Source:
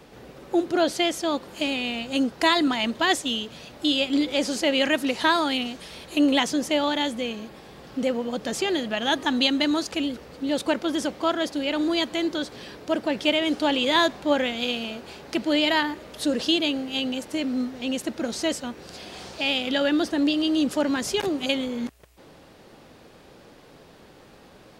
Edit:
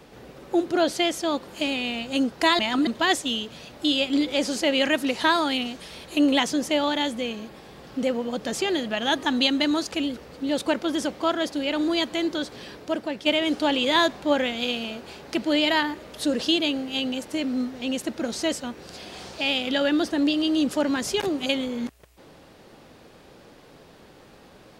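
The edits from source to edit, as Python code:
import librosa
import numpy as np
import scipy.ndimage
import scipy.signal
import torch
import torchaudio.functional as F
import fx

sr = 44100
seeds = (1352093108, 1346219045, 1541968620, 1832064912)

y = fx.edit(x, sr, fx.reverse_span(start_s=2.59, length_s=0.28),
    fx.fade_out_to(start_s=12.74, length_s=0.52, floor_db=-7.5), tone=tone)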